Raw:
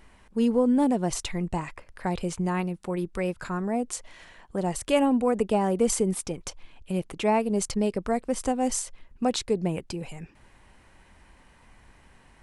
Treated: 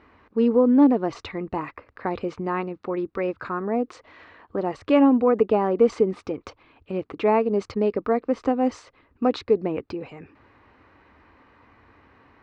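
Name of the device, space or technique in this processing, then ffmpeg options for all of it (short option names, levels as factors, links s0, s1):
guitar cabinet: -af "highpass=87,equalizer=f=89:t=q:w=4:g=6,equalizer=f=170:t=q:w=4:g=-9,equalizer=f=290:t=q:w=4:g=8,equalizer=f=450:t=q:w=4:g=6,equalizer=f=1200:t=q:w=4:g=8,equalizer=f=3200:t=q:w=4:g=-7,lowpass=f=3900:w=0.5412,lowpass=f=3900:w=1.3066,volume=1.12"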